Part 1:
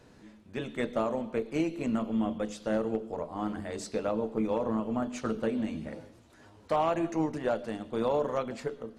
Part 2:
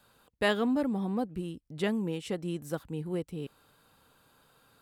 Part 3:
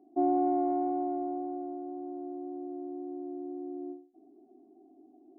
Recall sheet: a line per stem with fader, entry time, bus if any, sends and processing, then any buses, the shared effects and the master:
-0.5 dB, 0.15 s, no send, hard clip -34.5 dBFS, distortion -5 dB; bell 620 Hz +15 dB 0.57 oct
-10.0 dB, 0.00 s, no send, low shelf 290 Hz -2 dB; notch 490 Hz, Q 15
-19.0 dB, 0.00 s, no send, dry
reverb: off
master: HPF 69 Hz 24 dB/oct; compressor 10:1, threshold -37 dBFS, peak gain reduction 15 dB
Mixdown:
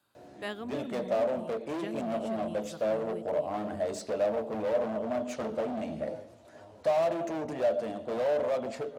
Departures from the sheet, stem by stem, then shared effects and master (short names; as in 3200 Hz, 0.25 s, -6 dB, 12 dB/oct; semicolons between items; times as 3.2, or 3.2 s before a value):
stem 3 -19.0 dB -> -28.5 dB; master: missing compressor 10:1, threshold -37 dBFS, peak gain reduction 15 dB